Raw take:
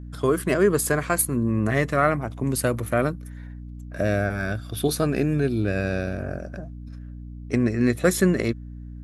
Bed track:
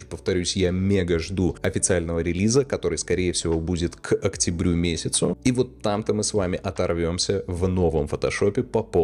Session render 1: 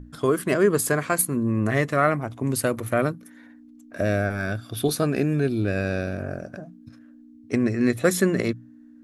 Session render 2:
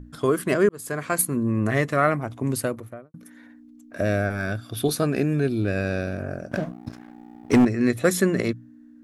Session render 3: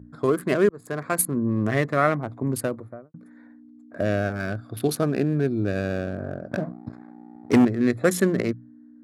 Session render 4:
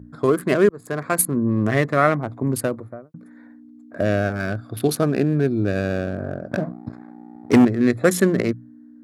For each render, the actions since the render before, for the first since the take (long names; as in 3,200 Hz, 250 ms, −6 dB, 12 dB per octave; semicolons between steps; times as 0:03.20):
mains-hum notches 60/120/180 Hz
0:00.69–0:01.20: fade in; 0:02.45–0:03.14: fade out and dull; 0:06.51–0:07.65: leveller curve on the samples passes 3
adaptive Wiener filter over 15 samples; high-pass filter 88 Hz
level +3.5 dB